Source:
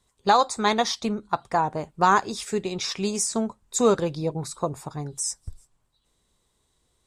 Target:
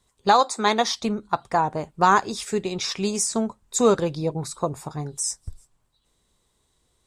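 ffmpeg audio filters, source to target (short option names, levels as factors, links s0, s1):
-filter_complex "[0:a]asettb=1/sr,asplit=3[s0][s1][s2];[s0]atrim=end=0.434[s3];[s1]atrim=start=0.43:end=0.93,asetpts=PTS-STARTPTS,afade=t=in:d=0.004:c=qsin,afade=t=out:st=0.496:d=0.004:c=qsin,highpass=f=200:w=0.5412,highpass=f=200:w=1.3066[s4];[s2]atrim=start=0.926[s5];[s3][s4]acrossfade=d=0.004:c1=hsin:c2=qsin[s6];[s6][s5]acrossfade=d=0.004:c1=qsin:c2=hsin,asettb=1/sr,asplit=3[s7][s8][s9];[s7]atrim=end=4.774[s10];[s8]atrim=start=4.77:end=5.37,asetpts=PTS-STARTPTS,afade=t=in:d=0.004:c=qsin,afade=t=out:st=0.596:d=0.004:c=qsin,asplit=2[s11][s12];[s12]adelay=26,volume=0.2[s13];[s11][s13]amix=inputs=2:normalize=0,atrim=end_sample=26460[s14];[s9]atrim=start=5.366[s15];[s10][s14]acrossfade=d=0.004:c1=hsin:c2=qsin[s16];[s16][s15]acrossfade=d=0.004:c1=qsin:c2=hsin,volume=1.19"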